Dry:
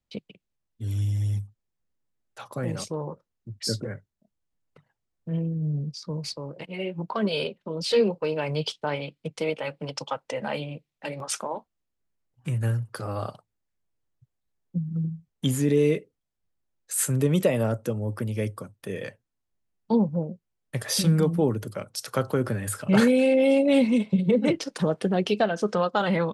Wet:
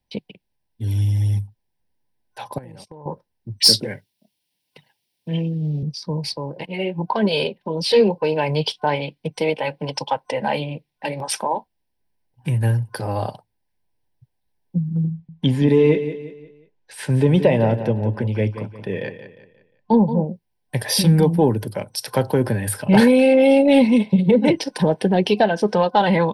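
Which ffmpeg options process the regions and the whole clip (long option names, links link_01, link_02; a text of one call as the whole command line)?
ffmpeg -i in.wav -filter_complex "[0:a]asettb=1/sr,asplit=3[link_01][link_02][link_03];[link_01]atrim=end=2.584[link_04];[link_02]atrim=start=2.58:end=3.06,asetpts=PTS-STARTPTS,afade=type=in:duration=0.004:curve=qsin,afade=type=out:start_time=0.476:duration=0.004:curve=qsin,agate=range=-22dB:threshold=-35dB:ratio=16:release=100:detection=peak,acompressor=threshold=-43dB:ratio=12:attack=3.2:release=140:knee=1:detection=peak[link_05];[link_03]atrim=start=3.056[link_06];[link_04][link_05]acrossfade=duration=0.004:curve1=hsin:curve2=qsin[link_07];[link_07][link_06]acrossfade=duration=0.004:curve1=qsin:curve2=hsin,asettb=1/sr,asplit=3[link_08][link_09][link_10];[link_08]atrim=end=3.604[link_11];[link_09]atrim=start=3.6:end=5.83,asetpts=PTS-STARTPTS,afade=type=in:duration=0.004:curve=qsin,afade=type=out:start_time=2.226:duration=0.004:curve=qsin,highpass=150,highshelf=frequency=2000:width_type=q:width=1.5:gain=11.5[link_12];[link_10]atrim=start=5.826[link_13];[link_11][link_12]acrossfade=duration=0.004:curve1=hsin:curve2=qsin[link_14];[link_14][link_13]acrossfade=duration=0.004:curve1=qsin:curve2=hsin,asettb=1/sr,asplit=3[link_15][link_16][link_17];[link_15]atrim=end=15.114[link_18];[link_16]atrim=start=15.11:end=20.25,asetpts=PTS-STARTPTS,afade=type=in:duration=0.004:curve=qsin,afade=type=out:start_time=5.136:duration=0.004:curve=qsin,lowpass=3600,aecho=1:1:177|354|531|708:0.266|0.101|0.0384|0.0146,atrim=end_sample=226674[link_19];[link_17]atrim=start=20.246[link_20];[link_18][link_19]acrossfade=duration=0.004:curve1=hsin:curve2=qsin[link_21];[link_21][link_20]acrossfade=duration=0.004:curve1=qsin:curve2=hsin,acontrast=76,superequalizer=9b=1.78:10b=0.282:15b=0.282" out.wav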